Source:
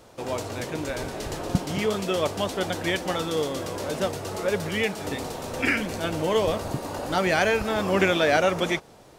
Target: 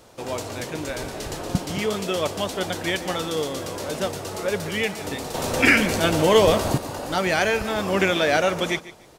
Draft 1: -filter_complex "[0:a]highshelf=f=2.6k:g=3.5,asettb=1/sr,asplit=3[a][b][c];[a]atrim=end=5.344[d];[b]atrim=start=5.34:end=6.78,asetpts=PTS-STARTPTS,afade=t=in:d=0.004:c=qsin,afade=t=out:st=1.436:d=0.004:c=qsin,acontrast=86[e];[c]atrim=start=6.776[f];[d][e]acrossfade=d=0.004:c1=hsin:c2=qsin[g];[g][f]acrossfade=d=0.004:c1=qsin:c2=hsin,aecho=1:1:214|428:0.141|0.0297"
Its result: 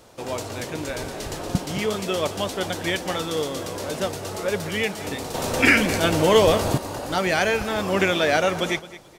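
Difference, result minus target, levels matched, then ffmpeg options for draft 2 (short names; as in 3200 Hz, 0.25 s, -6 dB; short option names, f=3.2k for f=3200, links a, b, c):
echo 67 ms late
-filter_complex "[0:a]highshelf=f=2.6k:g=3.5,asettb=1/sr,asplit=3[a][b][c];[a]atrim=end=5.344[d];[b]atrim=start=5.34:end=6.78,asetpts=PTS-STARTPTS,afade=t=in:d=0.004:c=qsin,afade=t=out:st=1.436:d=0.004:c=qsin,acontrast=86[e];[c]atrim=start=6.776[f];[d][e]acrossfade=d=0.004:c1=hsin:c2=qsin[g];[g][f]acrossfade=d=0.004:c1=qsin:c2=hsin,aecho=1:1:147|294:0.141|0.0297"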